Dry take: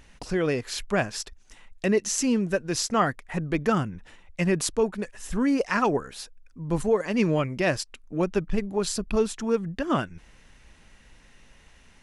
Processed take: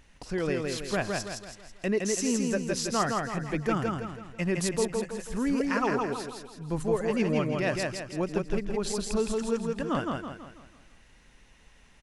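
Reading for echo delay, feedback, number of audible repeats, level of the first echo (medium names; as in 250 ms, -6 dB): 164 ms, 44%, 5, -3.0 dB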